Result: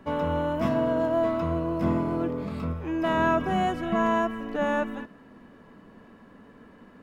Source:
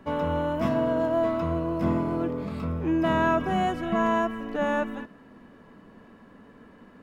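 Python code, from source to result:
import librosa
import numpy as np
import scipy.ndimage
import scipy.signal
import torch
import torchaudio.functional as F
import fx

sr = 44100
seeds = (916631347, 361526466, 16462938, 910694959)

y = fx.peak_eq(x, sr, hz=fx.line((2.72, 330.0), (3.17, 75.0)), db=-10.0, octaves=1.9, at=(2.72, 3.17), fade=0.02)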